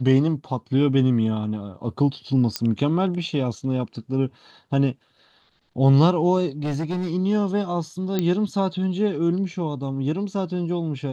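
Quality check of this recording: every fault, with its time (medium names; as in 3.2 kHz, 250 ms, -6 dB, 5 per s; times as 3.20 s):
2.56 s: pop -8 dBFS
6.63–7.12 s: clipped -21.5 dBFS
8.19 s: pop -10 dBFS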